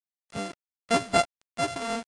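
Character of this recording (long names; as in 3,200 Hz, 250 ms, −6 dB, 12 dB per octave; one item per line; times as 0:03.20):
a buzz of ramps at a fixed pitch in blocks of 64 samples
tremolo triangle 3.6 Hz, depth 65%
a quantiser's noise floor 8 bits, dither none
AAC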